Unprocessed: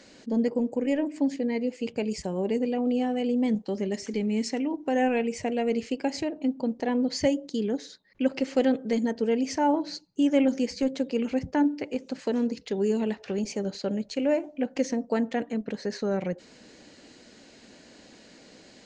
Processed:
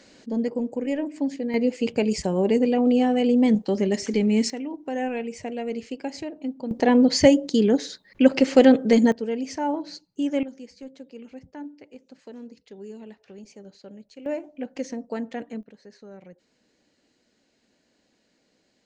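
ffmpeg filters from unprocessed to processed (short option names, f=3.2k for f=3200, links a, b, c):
-af "asetnsamples=n=441:p=0,asendcmd='1.54 volume volume 6.5dB;4.5 volume volume -3.5dB;6.71 volume volume 9dB;9.12 volume volume -2.5dB;10.43 volume volume -14.5dB;14.26 volume volume -4.5dB;15.63 volume volume -16.5dB',volume=-0.5dB"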